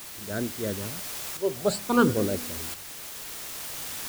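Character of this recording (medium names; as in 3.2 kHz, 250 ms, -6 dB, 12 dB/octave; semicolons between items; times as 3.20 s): phasing stages 12, 0.53 Hz, lowest notch 240–1000 Hz; a quantiser's noise floor 8-bit, dither triangular; tremolo saw up 0.73 Hz, depth 55%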